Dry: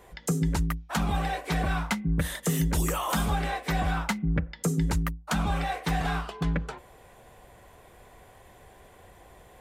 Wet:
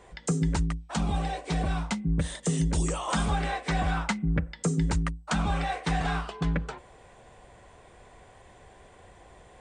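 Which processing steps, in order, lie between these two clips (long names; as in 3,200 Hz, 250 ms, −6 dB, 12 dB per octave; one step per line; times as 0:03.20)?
0:00.60–0:03.08: dynamic equaliser 1,600 Hz, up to −7 dB, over −46 dBFS, Q 0.89
MP2 128 kbit/s 32,000 Hz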